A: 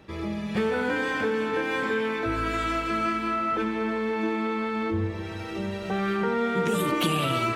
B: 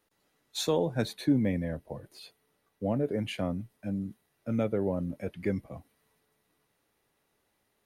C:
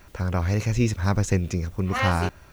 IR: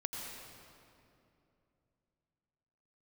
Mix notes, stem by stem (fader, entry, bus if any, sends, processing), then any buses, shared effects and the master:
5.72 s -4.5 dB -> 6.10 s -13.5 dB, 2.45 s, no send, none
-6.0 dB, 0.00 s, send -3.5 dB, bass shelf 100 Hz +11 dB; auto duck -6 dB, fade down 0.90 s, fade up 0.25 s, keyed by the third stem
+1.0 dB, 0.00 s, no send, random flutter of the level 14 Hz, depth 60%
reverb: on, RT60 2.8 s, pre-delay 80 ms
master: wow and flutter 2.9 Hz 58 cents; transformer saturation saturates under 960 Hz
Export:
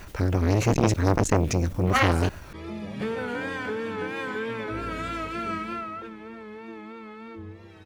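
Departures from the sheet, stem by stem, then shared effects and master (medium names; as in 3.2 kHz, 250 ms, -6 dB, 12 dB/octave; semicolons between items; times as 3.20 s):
stem B -6.0 dB -> -17.0 dB; stem C +1.0 dB -> +10.5 dB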